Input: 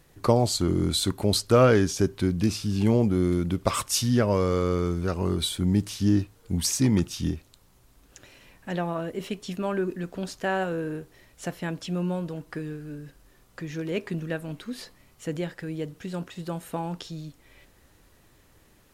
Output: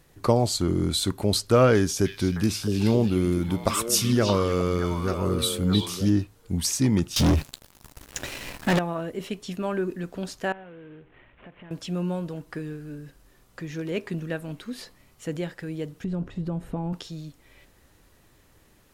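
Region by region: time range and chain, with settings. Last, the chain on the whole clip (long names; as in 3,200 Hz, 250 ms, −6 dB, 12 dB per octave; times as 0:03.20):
0:01.74–0:06.10: high-shelf EQ 8,600 Hz +8 dB + echo through a band-pass that steps 310 ms, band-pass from 3,000 Hz, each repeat −1.4 octaves, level −1 dB
0:07.16–0:08.79: mains-hum notches 50/100/150 Hz + leveller curve on the samples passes 5 + double-tracking delay 14 ms −14 dB
0:10.52–0:11.71: variable-slope delta modulation 16 kbit/s + downward compressor 4 to 1, threshold −45 dBFS
0:16.04–0:16.93: spectral tilt −4 dB per octave + downward compressor 2.5 to 1, threshold −27 dBFS
whole clip: no processing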